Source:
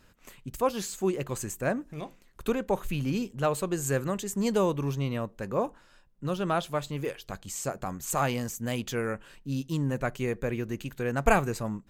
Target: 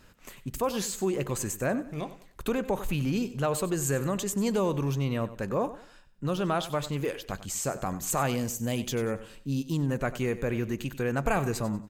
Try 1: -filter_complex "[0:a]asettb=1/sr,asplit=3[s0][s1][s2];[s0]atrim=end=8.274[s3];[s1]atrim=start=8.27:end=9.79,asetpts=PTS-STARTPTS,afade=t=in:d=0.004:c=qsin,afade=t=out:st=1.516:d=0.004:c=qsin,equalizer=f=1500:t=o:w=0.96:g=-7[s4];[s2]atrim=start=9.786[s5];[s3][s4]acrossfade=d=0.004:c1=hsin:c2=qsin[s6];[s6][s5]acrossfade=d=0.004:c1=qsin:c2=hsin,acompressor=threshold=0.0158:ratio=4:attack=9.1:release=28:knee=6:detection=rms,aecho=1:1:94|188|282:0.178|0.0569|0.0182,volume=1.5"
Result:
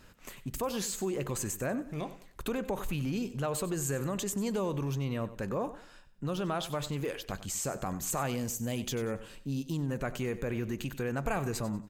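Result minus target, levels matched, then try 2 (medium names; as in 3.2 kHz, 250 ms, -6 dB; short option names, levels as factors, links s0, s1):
compression: peak gain reduction +5.5 dB
-filter_complex "[0:a]asettb=1/sr,asplit=3[s0][s1][s2];[s0]atrim=end=8.274[s3];[s1]atrim=start=8.27:end=9.79,asetpts=PTS-STARTPTS,afade=t=in:d=0.004:c=qsin,afade=t=out:st=1.516:d=0.004:c=qsin,equalizer=f=1500:t=o:w=0.96:g=-7[s4];[s2]atrim=start=9.786[s5];[s3][s4]acrossfade=d=0.004:c1=hsin:c2=qsin[s6];[s6][s5]acrossfade=d=0.004:c1=qsin:c2=hsin,acompressor=threshold=0.0376:ratio=4:attack=9.1:release=28:knee=6:detection=rms,aecho=1:1:94|188|282:0.178|0.0569|0.0182,volume=1.5"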